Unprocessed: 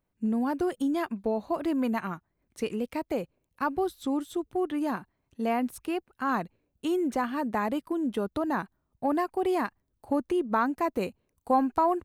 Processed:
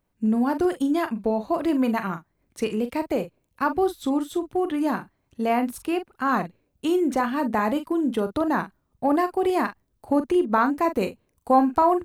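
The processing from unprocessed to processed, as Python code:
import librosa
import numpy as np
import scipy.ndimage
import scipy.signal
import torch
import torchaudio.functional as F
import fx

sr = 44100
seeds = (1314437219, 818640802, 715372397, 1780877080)

y = fx.doubler(x, sr, ms=42.0, db=-10.0)
y = y * 10.0 ** (5.0 / 20.0)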